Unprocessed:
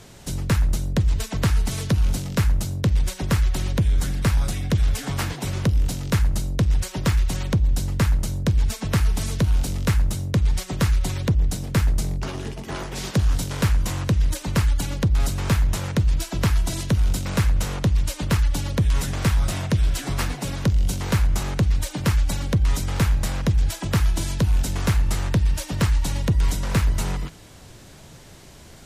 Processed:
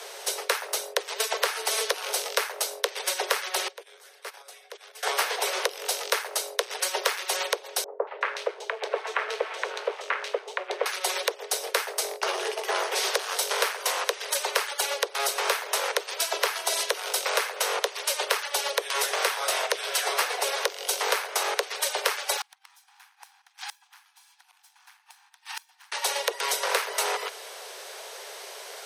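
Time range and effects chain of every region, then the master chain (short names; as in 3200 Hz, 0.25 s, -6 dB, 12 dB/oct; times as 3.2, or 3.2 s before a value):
3.68–5.03 gate -17 dBFS, range -21 dB + bell 74 Hz -5.5 dB 1 oct + compressor 4:1, threshold -36 dBFS
7.84–10.86 median filter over 9 samples + LPF 5000 Hz + three bands offset in time lows, mids, highs 0.23/0.37 s, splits 820/3100 Hz
22.37–25.92 minimum comb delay 1.2 ms + brick-wall FIR high-pass 730 Hz + flipped gate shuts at -29 dBFS, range -32 dB
whole clip: steep high-pass 400 Hz 96 dB/oct; notch 7200 Hz, Q 6.7; compressor 3:1, threshold -32 dBFS; gain +9 dB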